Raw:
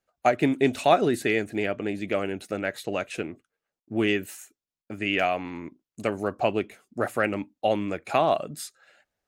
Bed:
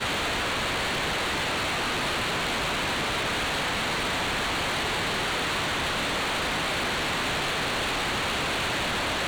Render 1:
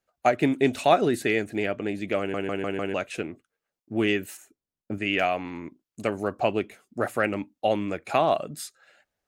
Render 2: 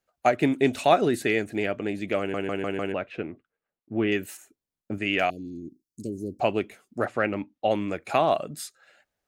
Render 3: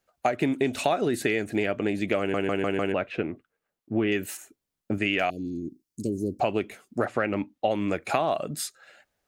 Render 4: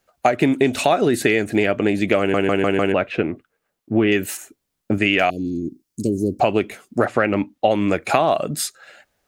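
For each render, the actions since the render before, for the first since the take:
2.19 stutter in place 0.15 s, 5 plays; 4.37–4.98 tilt shelf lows +7 dB, about 910 Hz
2.92–4.12 air absorption 340 m; 5.3–6.4 elliptic band-stop 360–4900 Hz, stop band 60 dB; 7.05–7.71 air absorption 120 m
in parallel at -2.5 dB: limiter -14 dBFS, peak gain reduction 7 dB; on the sum: compressor 6:1, threshold -21 dBFS, peak gain reduction 10.5 dB
gain +8 dB; limiter -3 dBFS, peak gain reduction 2 dB

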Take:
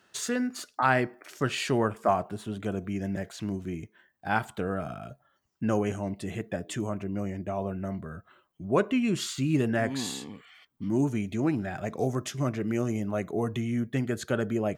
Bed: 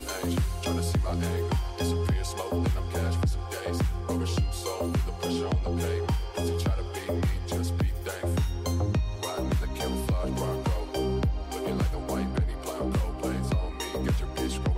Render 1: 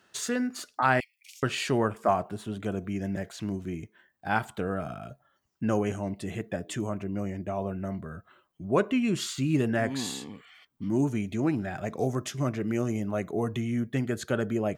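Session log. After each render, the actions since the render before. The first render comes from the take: 1–1.43 steep high-pass 2200 Hz 96 dB/oct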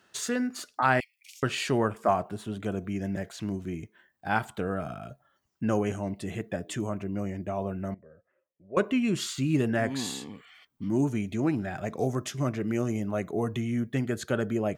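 7.94–8.77 vocal tract filter e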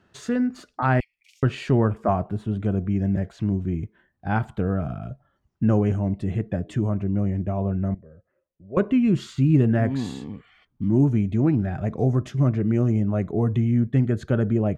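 RIAA curve playback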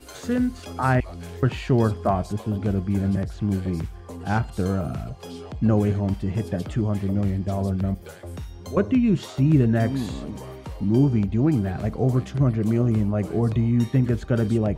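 add bed -8.5 dB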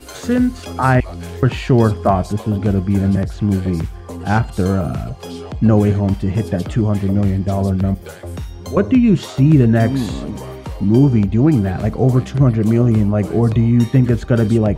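gain +7.5 dB; limiter -2 dBFS, peak gain reduction 2 dB

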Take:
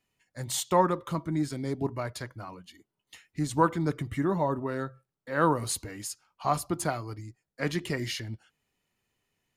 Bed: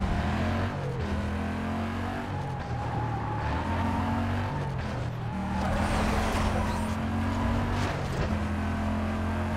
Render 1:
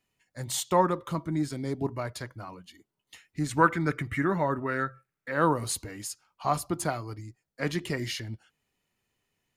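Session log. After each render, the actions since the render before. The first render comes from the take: 3.46–5.32 band shelf 1800 Hz +9.5 dB 1.2 oct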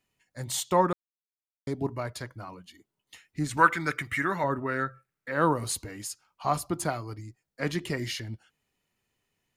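0.93–1.67 mute; 3.57–4.44 tilt shelf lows -7 dB, about 820 Hz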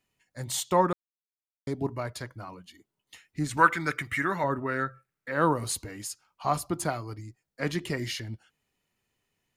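nothing audible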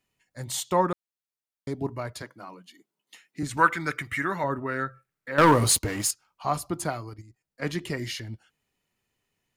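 2.22–3.43 HPF 170 Hz 24 dB/oct; 5.38–6.11 sample leveller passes 3; 7.09–7.64 level quantiser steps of 10 dB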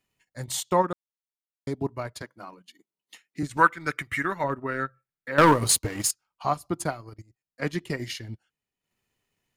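transient shaper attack +2 dB, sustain -11 dB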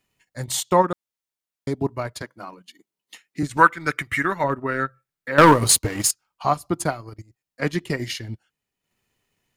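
gain +5 dB; limiter -1 dBFS, peak gain reduction 1 dB

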